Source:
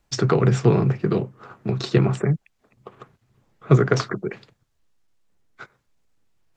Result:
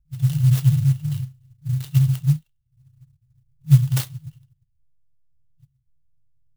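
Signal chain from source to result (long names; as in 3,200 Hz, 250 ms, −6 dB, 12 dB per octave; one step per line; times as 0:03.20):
delay with a high-pass on its return 68 ms, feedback 67%, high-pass 2,800 Hz, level −18 dB
low-pass that shuts in the quiet parts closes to 460 Hz, open at −14.5 dBFS
brick-wall band-stop 160–2,700 Hz
converter with an unsteady clock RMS 0.054 ms
level +4 dB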